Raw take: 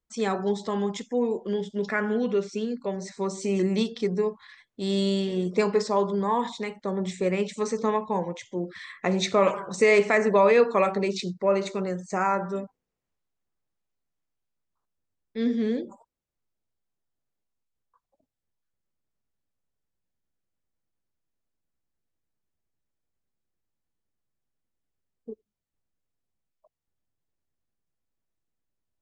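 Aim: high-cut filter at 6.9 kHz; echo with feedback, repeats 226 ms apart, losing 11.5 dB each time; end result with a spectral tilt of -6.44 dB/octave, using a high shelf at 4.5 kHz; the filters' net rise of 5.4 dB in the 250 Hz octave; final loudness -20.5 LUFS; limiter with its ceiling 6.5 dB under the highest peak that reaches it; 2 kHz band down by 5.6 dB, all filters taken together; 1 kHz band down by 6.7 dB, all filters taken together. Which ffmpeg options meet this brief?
-af "lowpass=6900,equalizer=f=250:t=o:g=7.5,equalizer=f=1000:t=o:g=-7.5,equalizer=f=2000:t=o:g=-3.5,highshelf=f=4500:g=-6.5,alimiter=limit=0.2:level=0:latency=1,aecho=1:1:226|452|678:0.266|0.0718|0.0194,volume=1.68"

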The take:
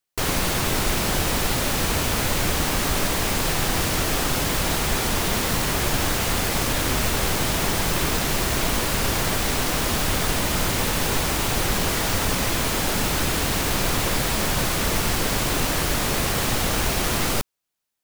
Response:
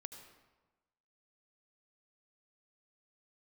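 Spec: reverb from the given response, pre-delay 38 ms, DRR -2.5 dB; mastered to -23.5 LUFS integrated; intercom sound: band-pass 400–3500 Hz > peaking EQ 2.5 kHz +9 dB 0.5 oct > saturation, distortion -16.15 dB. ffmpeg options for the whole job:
-filter_complex "[0:a]asplit=2[s0][s1];[1:a]atrim=start_sample=2205,adelay=38[s2];[s1][s2]afir=irnorm=-1:irlink=0,volume=2.24[s3];[s0][s3]amix=inputs=2:normalize=0,highpass=400,lowpass=3500,equalizer=f=2500:t=o:w=0.5:g=9,asoftclip=threshold=0.15,volume=0.794"

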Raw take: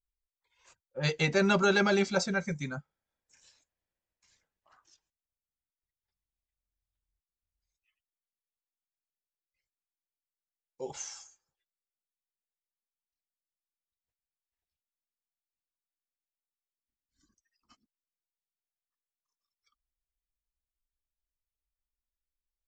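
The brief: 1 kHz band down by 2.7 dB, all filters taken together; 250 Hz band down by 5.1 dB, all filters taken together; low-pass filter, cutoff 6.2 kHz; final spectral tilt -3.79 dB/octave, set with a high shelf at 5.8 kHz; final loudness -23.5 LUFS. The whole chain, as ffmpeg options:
-af "lowpass=6200,equalizer=f=250:t=o:g=-8,equalizer=f=1000:t=o:g=-4,highshelf=f=5800:g=5.5,volume=2.37"

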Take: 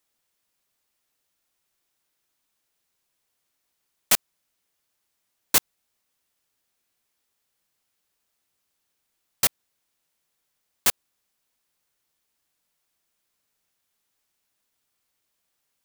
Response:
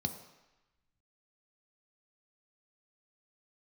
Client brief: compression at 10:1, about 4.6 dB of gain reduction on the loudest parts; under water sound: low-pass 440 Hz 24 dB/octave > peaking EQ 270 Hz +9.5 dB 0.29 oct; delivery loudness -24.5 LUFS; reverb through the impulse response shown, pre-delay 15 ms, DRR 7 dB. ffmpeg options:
-filter_complex "[0:a]acompressor=threshold=0.112:ratio=10,asplit=2[s0][s1];[1:a]atrim=start_sample=2205,adelay=15[s2];[s1][s2]afir=irnorm=-1:irlink=0,volume=0.376[s3];[s0][s3]amix=inputs=2:normalize=0,lowpass=f=440:w=0.5412,lowpass=f=440:w=1.3066,equalizer=f=270:t=o:w=0.29:g=9.5,volume=7.94"

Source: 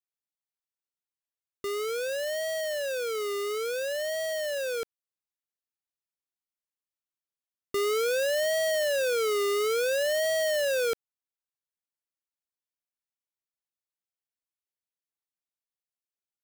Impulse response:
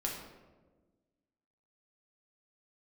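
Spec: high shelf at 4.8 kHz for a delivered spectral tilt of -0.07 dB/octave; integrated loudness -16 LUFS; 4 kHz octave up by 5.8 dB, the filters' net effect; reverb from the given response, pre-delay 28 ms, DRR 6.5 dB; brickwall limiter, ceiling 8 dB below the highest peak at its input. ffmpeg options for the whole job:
-filter_complex "[0:a]equalizer=f=4000:t=o:g=5.5,highshelf=f=4800:g=4.5,alimiter=level_in=1.41:limit=0.0631:level=0:latency=1,volume=0.708,asplit=2[s0][s1];[1:a]atrim=start_sample=2205,adelay=28[s2];[s1][s2]afir=irnorm=-1:irlink=0,volume=0.355[s3];[s0][s3]amix=inputs=2:normalize=0,volume=6.31"

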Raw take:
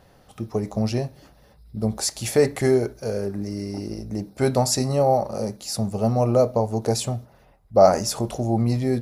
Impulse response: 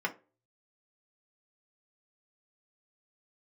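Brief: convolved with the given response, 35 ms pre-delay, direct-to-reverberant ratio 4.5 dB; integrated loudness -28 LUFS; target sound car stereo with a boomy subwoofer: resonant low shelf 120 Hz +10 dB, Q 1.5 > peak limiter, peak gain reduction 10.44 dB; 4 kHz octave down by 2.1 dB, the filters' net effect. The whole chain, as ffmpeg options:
-filter_complex "[0:a]equalizer=f=4000:t=o:g=-3,asplit=2[s0][s1];[1:a]atrim=start_sample=2205,adelay=35[s2];[s1][s2]afir=irnorm=-1:irlink=0,volume=0.266[s3];[s0][s3]amix=inputs=2:normalize=0,lowshelf=f=120:t=q:w=1.5:g=10,volume=0.631,alimiter=limit=0.133:level=0:latency=1"

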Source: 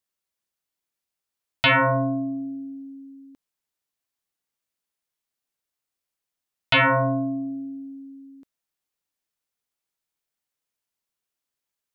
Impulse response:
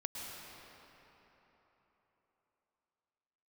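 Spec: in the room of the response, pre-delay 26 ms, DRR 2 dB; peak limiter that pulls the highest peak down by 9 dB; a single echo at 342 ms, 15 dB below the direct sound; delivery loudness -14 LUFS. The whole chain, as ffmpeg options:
-filter_complex "[0:a]alimiter=limit=0.0841:level=0:latency=1,aecho=1:1:342:0.178,asplit=2[s0][s1];[1:a]atrim=start_sample=2205,adelay=26[s2];[s1][s2]afir=irnorm=-1:irlink=0,volume=0.708[s3];[s0][s3]amix=inputs=2:normalize=0,volume=3.55"

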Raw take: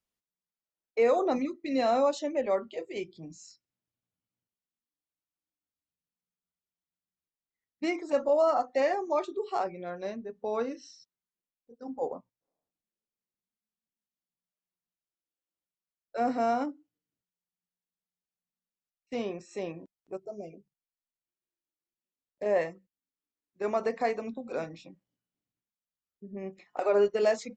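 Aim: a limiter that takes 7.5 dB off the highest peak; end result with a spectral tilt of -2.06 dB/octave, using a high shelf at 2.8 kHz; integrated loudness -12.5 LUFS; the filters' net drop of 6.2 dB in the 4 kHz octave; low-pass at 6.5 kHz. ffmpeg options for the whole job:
-af "lowpass=6500,highshelf=f=2800:g=-3.5,equalizer=f=4000:t=o:g=-4.5,volume=12.6,alimiter=limit=0.891:level=0:latency=1"

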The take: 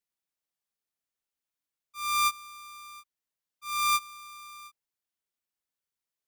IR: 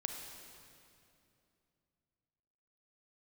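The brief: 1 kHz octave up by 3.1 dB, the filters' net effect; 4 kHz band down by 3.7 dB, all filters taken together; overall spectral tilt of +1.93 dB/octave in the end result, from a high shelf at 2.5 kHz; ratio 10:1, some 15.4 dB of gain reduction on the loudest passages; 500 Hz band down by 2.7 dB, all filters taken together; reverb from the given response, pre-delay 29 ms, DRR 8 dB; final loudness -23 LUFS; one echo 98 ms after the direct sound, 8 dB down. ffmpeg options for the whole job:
-filter_complex "[0:a]equalizer=f=500:t=o:g=-5,equalizer=f=1000:t=o:g=4,highshelf=f=2500:g=5.5,equalizer=f=4000:t=o:g=-9,acompressor=threshold=0.0158:ratio=10,aecho=1:1:98:0.398,asplit=2[s0][s1];[1:a]atrim=start_sample=2205,adelay=29[s2];[s1][s2]afir=irnorm=-1:irlink=0,volume=0.376[s3];[s0][s3]amix=inputs=2:normalize=0,volume=8.41"

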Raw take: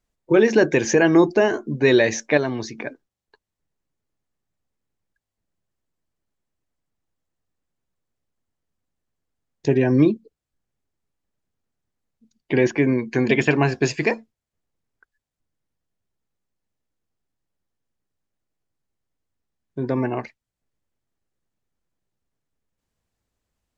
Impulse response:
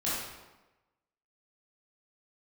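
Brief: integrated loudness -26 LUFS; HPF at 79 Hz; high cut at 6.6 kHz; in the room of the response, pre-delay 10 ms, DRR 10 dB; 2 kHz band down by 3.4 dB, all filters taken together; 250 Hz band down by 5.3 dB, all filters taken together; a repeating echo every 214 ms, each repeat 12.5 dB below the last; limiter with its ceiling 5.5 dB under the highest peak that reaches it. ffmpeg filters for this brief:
-filter_complex "[0:a]highpass=79,lowpass=6600,equalizer=f=250:t=o:g=-7.5,equalizer=f=2000:t=o:g=-4,alimiter=limit=0.282:level=0:latency=1,aecho=1:1:214|428|642:0.237|0.0569|0.0137,asplit=2[s0][s1];[1:a]atrim=start_sample=2205,adelay=10[s2];[s1][s2]afir=irnorm=-1:irlink=0,volume=0.133[s3];[s0][s3]amix=inputs=2:normalize=0,volume=0.794"

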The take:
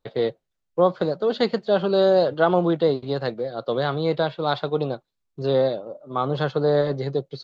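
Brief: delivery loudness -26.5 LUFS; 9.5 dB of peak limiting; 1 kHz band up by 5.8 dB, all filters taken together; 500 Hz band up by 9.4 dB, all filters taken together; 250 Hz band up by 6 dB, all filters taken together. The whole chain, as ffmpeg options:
-af "equalizer=f=250:t=o:g=4.5,equalizer=f=500:t=o:g=9,equalizer=f=1000:t=o:g=3.5,volume=0.376,alimiter=limit=0.158:level=0:latency=1"

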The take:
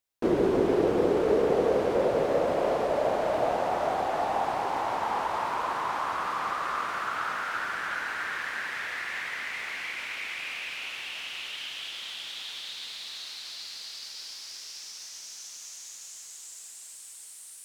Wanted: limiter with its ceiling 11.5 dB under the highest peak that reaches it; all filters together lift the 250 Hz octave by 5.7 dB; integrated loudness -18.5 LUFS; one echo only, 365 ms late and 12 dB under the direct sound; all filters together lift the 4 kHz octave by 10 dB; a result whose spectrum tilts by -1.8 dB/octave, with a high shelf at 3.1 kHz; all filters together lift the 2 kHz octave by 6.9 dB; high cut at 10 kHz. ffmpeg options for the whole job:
-af "lowpass=10000,equalizer=f=250:t=o:g=8,equalizer=f=2000:t=o:g=5,highshelf=f=3100:g=5.5,equalizer=f=4000:t=o:g=7,alimiter=limit=0.106:level=0:latency=1,aecho=1:1:365:0.251,volume=2.82"

